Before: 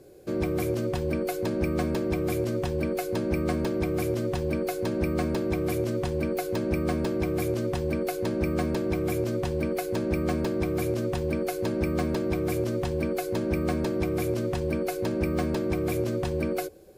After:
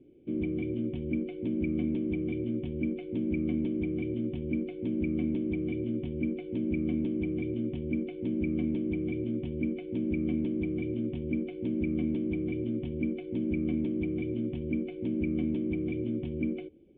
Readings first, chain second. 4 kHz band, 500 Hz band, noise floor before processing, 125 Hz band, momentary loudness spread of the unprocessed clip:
under -10 dB, -9.0 dB, -33 dBFS, -6.0 dB, 2 LU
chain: vocal tract filter i; gain +5 dB

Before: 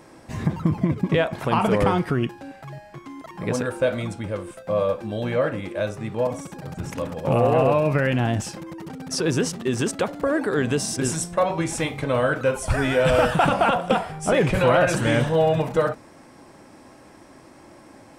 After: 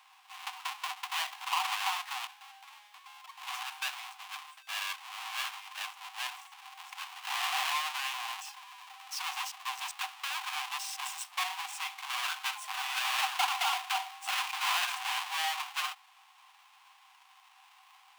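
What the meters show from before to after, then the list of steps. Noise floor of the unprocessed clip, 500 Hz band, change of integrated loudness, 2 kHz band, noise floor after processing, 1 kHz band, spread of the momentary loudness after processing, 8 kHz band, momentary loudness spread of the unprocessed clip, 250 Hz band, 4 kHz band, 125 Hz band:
-48 dBFS, -36.0 dB, -11.5 dB, -6.5 dB, -61 dBFS, -8.5 dB, 16 LU, -7.0 dB, 15 LU, under -40 dB, +1.0 dB, under -40 dB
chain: half-waves squared off; rippled Chebyshev high-pass 740 Hz, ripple 9 dB; gain -6.5 dB

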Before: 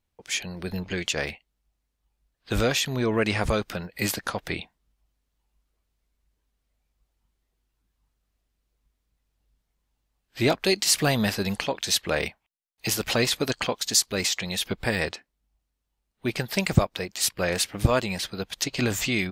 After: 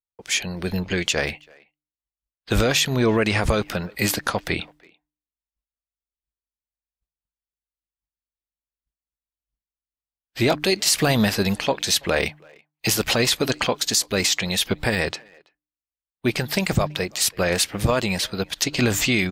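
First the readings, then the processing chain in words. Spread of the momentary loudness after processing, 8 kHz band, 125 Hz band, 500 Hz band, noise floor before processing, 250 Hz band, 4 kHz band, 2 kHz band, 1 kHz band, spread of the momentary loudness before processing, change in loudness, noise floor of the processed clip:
9 LU, +3.5 dB, +3.5 dB, +4.0 dB, -79 dBFS, +4.5 dB, +4.5 dB, +4.5 dB, +4.0 dB, 10 LU, +4.0 dB, under -85 dBFS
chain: expander -53 dBFS; de-hum 150 Hz, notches 2; limiter -14.5 dBFS, peak gain reduction 9 dB; speakerphone echo 0.33 s, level -25 dB; gain +6 dB

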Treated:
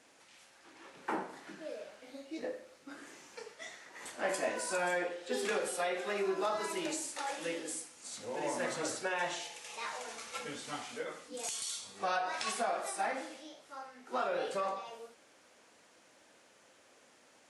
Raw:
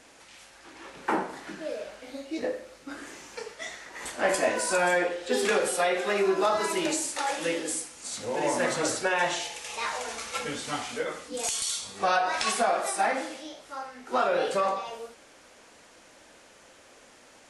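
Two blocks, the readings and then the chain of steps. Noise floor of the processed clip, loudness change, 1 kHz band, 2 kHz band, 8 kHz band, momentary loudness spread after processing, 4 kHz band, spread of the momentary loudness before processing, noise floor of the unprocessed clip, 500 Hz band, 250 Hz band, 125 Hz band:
-64 dBFS, -9.0 dB, -9.0 dB, -9.0 dB, -9.0 dB, 15 LU, -9.0 dB, 15 LU, -55 dBFS, -9.0 dB, -9.0 dB, -10.0 dB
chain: HPF 110 Hz 12 dB/oct; gain -9 dB

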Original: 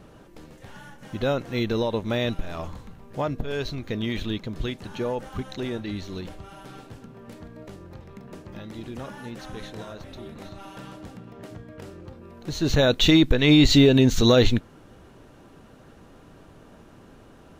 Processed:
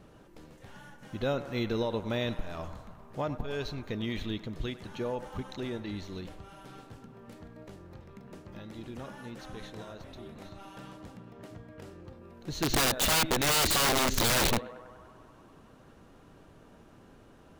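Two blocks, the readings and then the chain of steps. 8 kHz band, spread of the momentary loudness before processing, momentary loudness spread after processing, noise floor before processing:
+5.5 dB, 24 LU, 24 LU, -50 dBFS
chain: narrowing echo 98 ms, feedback 83%, band-pass 1000 Hz, level -12 dB; wrapped overs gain 14.5 dB; gain -6 dB

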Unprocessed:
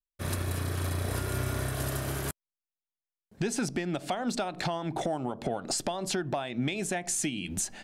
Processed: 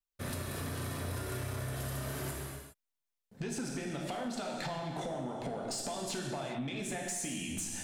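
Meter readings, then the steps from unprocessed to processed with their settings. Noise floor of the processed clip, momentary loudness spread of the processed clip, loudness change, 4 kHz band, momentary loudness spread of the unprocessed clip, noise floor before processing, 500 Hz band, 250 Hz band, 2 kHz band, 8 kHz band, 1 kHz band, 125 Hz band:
under -85 dBFS, 3 LU, -6.0 dB, -5.0 dB, 3 LU, under -85 dBFS, -5.5 dB, -6.0 dB, -5.5 dB, -5.5 dB, -6.0 dB, -6.0 dB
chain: non-linear reverb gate 0.44 s falling, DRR -0.5 dB; compressor 4:1, threshold -32 dBFS, peak gain reduction 9 dB; soft clip -27 dBFS, distortion -20 dB; gain -2 dB

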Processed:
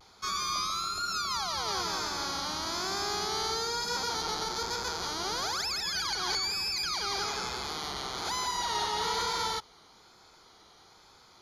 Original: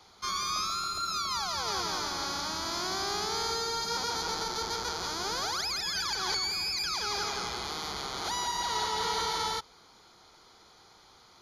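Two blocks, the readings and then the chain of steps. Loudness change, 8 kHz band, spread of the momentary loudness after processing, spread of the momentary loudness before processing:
0.0 dB, 0.0 dB, 4 LU, 4 LU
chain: vibrato 1.1 Hz 59 cents

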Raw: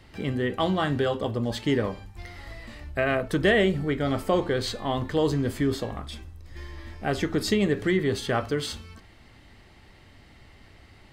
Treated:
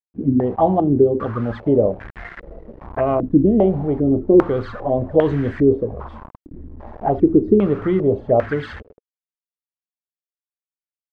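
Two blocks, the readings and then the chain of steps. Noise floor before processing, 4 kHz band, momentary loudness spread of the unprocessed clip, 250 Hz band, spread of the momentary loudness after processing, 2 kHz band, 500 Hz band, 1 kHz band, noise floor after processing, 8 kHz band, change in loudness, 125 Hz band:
-53 dBFS, under -10 dB, 18 LU, +9.5 dB, 14 LU, -5.5 dB, +9.0 dB, +7.0 dB, under -85 dBFS, under -20 dB, +8.0 dB, +6.0 dB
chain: envelope flanger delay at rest 10 ms, full sweep at -22 dBFS; bit-crush 7-bit; stepped low-pass 2.5 Hz 280–1700 Hz; gain +5.5 dB

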